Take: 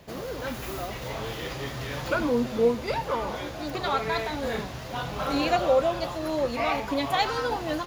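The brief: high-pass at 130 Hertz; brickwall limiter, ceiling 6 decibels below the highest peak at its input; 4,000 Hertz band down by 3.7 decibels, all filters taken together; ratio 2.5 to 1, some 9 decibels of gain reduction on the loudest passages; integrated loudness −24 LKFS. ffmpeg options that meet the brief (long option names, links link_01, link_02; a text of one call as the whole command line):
ffmpeg -i in.wav -af "highpass=130,equalizer=frequency=4000:width_type=o:gain=-4.5,acompressor=threshold=-31dB:ratio=2.5,volume=11dB,alimiter=limit=-14.5dB:level=0:latency=1" out.wav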